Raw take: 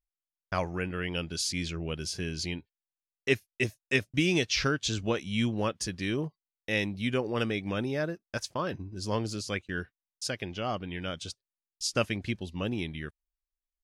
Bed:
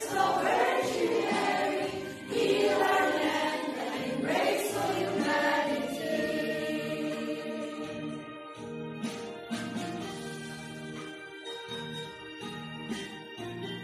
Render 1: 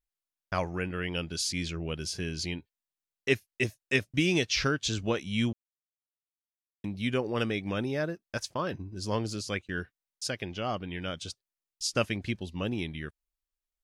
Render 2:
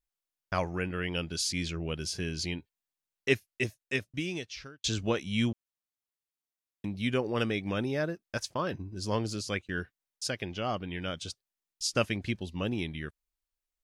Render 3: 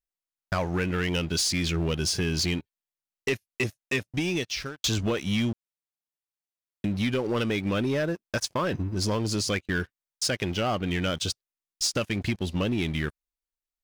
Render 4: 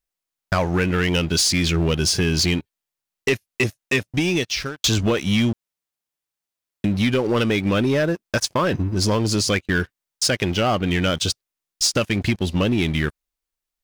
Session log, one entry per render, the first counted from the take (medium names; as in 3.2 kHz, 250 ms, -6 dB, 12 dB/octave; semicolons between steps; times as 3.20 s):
5.53–6.84 s: mute
3.31–4.84 s: fade out linear
compression 6:1, threshold -32 dBFS, peak gain reduction 12 dB; waveshaping leveller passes 3
trim +7 dB